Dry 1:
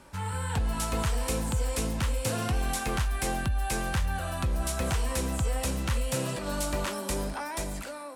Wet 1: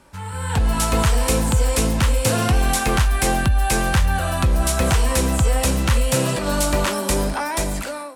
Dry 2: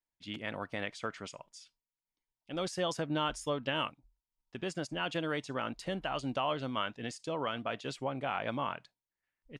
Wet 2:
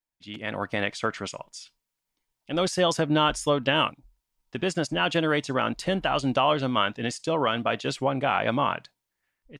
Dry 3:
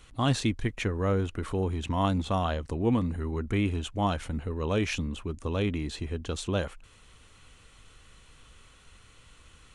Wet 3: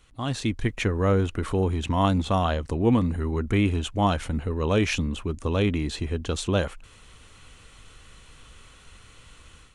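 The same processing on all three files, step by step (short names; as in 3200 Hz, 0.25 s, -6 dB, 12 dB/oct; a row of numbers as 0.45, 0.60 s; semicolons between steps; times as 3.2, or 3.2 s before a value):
AGC gain up to 10 dB; normalise peaks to -9 dBFS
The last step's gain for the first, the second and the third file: +1.0, +0.5, -5.0 dB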